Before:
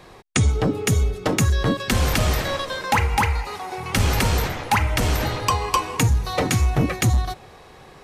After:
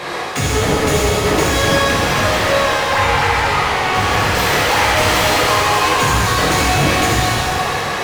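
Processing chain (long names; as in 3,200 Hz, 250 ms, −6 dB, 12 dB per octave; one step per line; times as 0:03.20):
parametric band 95 Hz +11 dB 0.21 octaves
mid-hump overdrive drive 38 dB, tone 4,500 Hz, clips at −6 dBFS
0:01.75–0:04.35: high-shelf EQ 4,100 Hz −9.5 dB
reverb with rising layers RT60 2.1 s, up +7 semitones, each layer −8 dB, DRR −6 dB
level −8.5 dB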